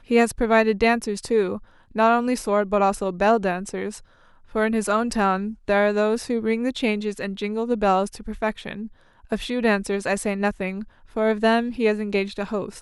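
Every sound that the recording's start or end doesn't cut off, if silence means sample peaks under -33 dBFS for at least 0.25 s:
1.95–3.98 s
4.55–8.87 s
9.32–10.84 s

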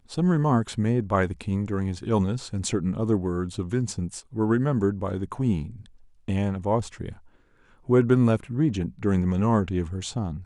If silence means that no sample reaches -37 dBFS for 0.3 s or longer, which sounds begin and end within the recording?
6.28–7.12 s

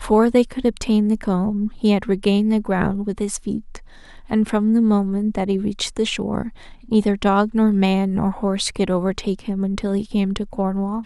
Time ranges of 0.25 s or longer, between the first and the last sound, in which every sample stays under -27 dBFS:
3.77–4.30 s
6.49–6.91 s

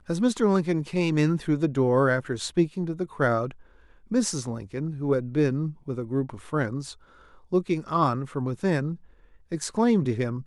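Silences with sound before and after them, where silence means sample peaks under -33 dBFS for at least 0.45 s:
3.51–4.12 s
6.93–7.53 s
8.95–9.52 s

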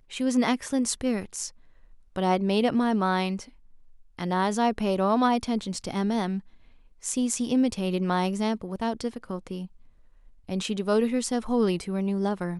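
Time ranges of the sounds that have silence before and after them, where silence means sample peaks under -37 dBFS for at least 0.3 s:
2.16–3.43 s
4.19–6.40 s
7.04–9.66 s

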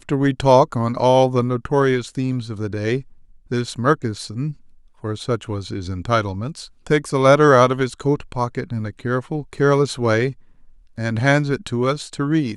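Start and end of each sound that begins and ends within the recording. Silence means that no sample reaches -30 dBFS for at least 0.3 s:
3.51–4.52 s
5.04–10.32 s

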